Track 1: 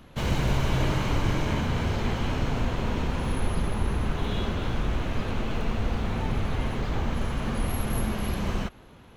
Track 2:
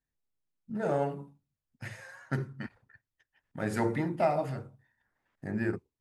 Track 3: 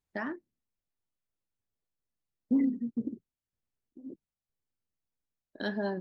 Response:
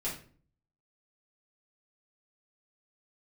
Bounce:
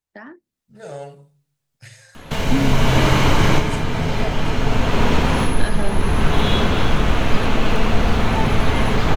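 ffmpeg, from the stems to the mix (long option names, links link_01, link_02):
-filter_complex "[0:a]adelay=2150,volume=2dB,asplit=2[link_01][link_02];[link_02]volume=-11.5dB[link_03];[1:a]equalizer=frequency=125:width_type=o:width=1:gain=10,equalizer=frequency=250:width_type=o:width=1:gain=-12,equalizer=frequency=500:width_type=o:width=1:gain=4,equalizer=frequency=1000:width_type=o:width=1:gain=-6,equalizer=frequency=4000:width_type=o:width=1:gain=9,equalizer=frequency=8000:width_type=o:width=1:gain=11,volume=-15dB,asplit=3[link_04][link_05][link_06];[link_05]volume=-18dB[link_07];[2:a]acrossover=split=250[link_08][link_09];[link_09]acompressor=threshold=-40dB:ratio=2[link_10];[link_08][link_10]amix=inputs=2:normalize=0,volume=0.5dB[link_11];[link_06]apad=whole_len=498798[link_12];[link_01][link_12]sidechaincompress=threshold=-52dB:ratio=4:attack=6.4:release=620[link_13];[3:a]atrim=start_sample=2205[link_14];[link_03][link_07]amix=inputs=2:normalize=0[link_15];[link_15][link_14]afir=irnorm=-1:irlink=0[link_16];[link_13][link_04][link_11][link_16]amix=inputs=4:normalize=0,lowshelf=frequency=420:gain=-5,dynaudnorm=framelen=410:gausssize=3:maxgain=12.5dB"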